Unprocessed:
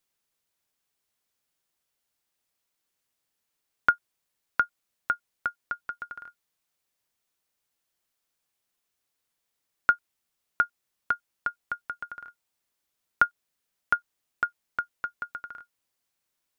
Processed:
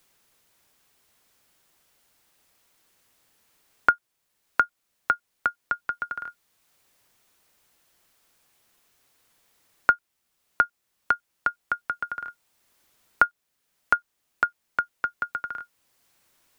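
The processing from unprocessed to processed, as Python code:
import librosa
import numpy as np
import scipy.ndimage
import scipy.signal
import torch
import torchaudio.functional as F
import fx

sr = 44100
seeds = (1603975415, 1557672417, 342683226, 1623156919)

y = fx.band_squash(x, sr, depth_pct=40)
y = y * 10.0 ** (5.0 / 20.0)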